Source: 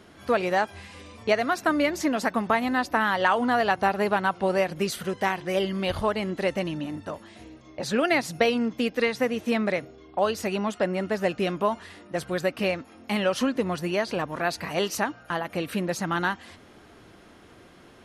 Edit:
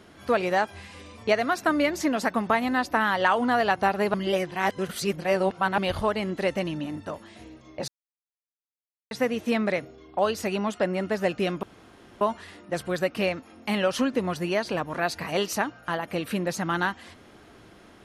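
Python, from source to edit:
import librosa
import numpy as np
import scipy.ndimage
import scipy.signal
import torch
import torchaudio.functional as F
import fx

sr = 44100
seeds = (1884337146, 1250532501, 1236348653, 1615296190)

y = fx.edit(x, sr, fx.reverse_span(start_s=4.14, length_s=1.64),
    fx.silence(start_s=7.88, length_s=1.23),
    fx.insert_room_tone(at_s=11.63, length_s=0.58), tone=tone)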